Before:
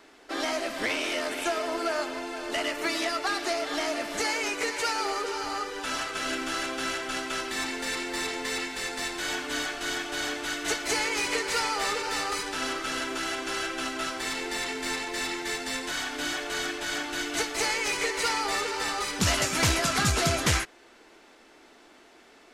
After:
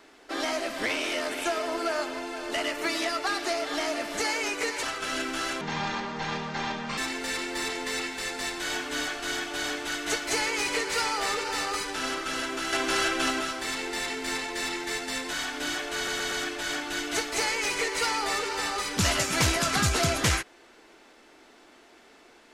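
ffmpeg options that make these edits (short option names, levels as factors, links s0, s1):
-filter_complex "[0:a]asplit=9[s0][s1][s2][s3][s4][s5][s6][s7][s8];[s0]atrim=end=4.832[s9];[s1]atrim=start=5.958:end=6.744[s10];[s2]atrim=start=6.74:end=7.56,asetpts=PTS-STARTPTS,asetrate=26460,aresample=44100[s11];[s3]atrim=start=7.556:end=13.312[s12];[s4]atrim=start=13.308:end=13.992,asetpts=PTS-STARTPTS,volume=1.88[s13];[s5]atrim=start=13.988:end=16.662[s14];[s6]atrim=start=16.538:end=16.662[s15];[s7]atrim=start=16.538:end=16.662[s16];[s8]atrim=start=16.538[s17];[s9][s10]acrossfade=d=0.004:c1=hsin:c2=hsin[s18];[s18][s11]acrossfade=d=0.004:c1=hsin:c2=hsin[s19];[s19][s12]acrossfade=d=0.004:c1=hsin:c2=hsin[s20];[s20][s13]acrossfade=d=0.004:c1=hsin:c2=hsin[s21];[s21][s14]acrossfade=d=0.004:c1=hsin:c2=hsin[s22];[s22][s15]acrossfade=d=0.004:c1=hsin:c2=hsin[s23];[s23][s16]acrossfade=d=0.004:c1=hsin:c2=hsin[s24];[s24][s17]acrossfade=d=0.004:c1=hsin:c2=hsin"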